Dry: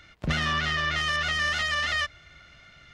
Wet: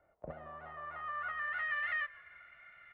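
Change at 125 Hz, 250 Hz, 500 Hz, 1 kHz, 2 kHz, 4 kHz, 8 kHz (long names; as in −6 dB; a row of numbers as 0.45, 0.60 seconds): below −20 dB, below −20 dB, −11.0 dB, −10.5 dB, −11.0 dB, −28.0 dB, below −40 dB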